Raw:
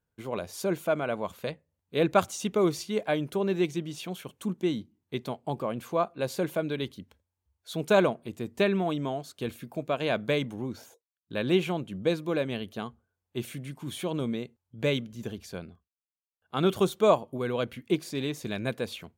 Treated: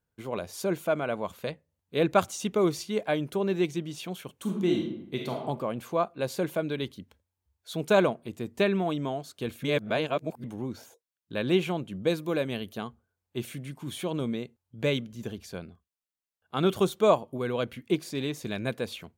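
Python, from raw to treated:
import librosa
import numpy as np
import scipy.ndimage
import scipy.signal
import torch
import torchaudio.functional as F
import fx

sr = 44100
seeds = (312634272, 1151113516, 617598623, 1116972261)

y = fx.reverb_throw(x, sr, start_s=4.41, length_s=1.0, rt60_s=0.82, drr_db=0.0)
y = fx.high_shelf(y, sr, hz=10000.0, db=10.5, at=(12.07, 12.78))
y = fx.edit(y, sr, fx.reverse_span(start_s=9.63, length_s=0.81), tone=tone)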